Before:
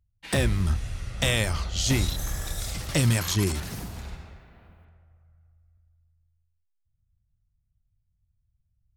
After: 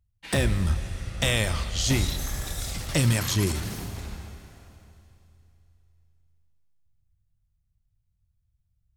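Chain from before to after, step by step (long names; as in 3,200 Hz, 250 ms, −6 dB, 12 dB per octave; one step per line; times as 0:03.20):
four-comb reverb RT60 3.1 s, combs from 29 ms, DRR 11.5 dB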